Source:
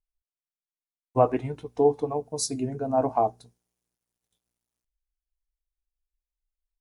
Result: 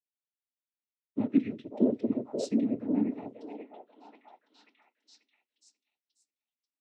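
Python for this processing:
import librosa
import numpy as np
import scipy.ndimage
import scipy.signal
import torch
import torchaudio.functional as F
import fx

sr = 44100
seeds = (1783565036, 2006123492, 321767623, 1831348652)

p1 = fx.vowel_filter(x, sr, vowel='i')
p2 = fx.noise_vocoder(p1, sr, seeds[0], bands=12)
p3 = fx.rider(p2, sr, range_db=10, speed_s=0.5)
p4 = p3 + fx.echo_stepped(p3, sr, ms=538, hz=620.0, octaves=0.7, feedback_pct=70, wet_db=-1.0, dry=0)
y = p4 * librosa.db_to_amplitude(7.5)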